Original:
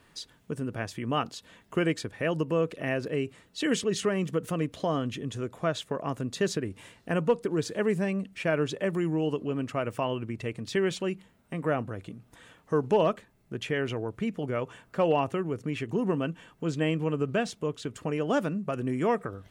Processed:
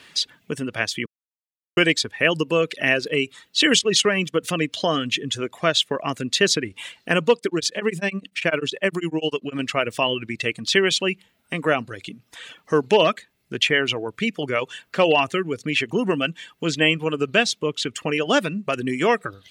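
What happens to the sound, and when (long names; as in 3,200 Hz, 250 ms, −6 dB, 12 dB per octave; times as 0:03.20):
0:01.06–0:01.77: silence
0:03.79–0:04.36: noise gate −36 dBFS, range −9 dB
0:07.36–0:09.59: tremolo along a rectified sine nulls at 10 Hz
whole clip: reverb reduction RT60 0.77 s; meter weighting curve D; level +7.5 dB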